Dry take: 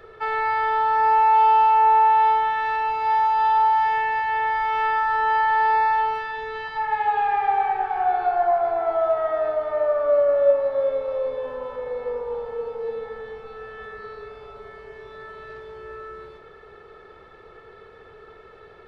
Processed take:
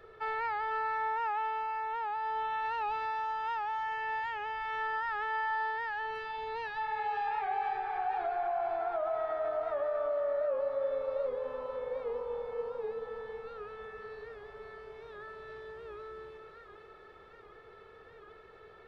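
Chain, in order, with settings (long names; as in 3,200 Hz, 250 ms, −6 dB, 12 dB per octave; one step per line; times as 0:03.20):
brickwall limiter −19 dBFS, peak gain reduction 10.5 dB
on a send: feedback echo with a high-pass in the loop 496 ms, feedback 55%, high-pass 710 Hz, level −4.5 dB
on the sum: wow of a warped record 78 rpm, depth 100 cents
level −8.5 dB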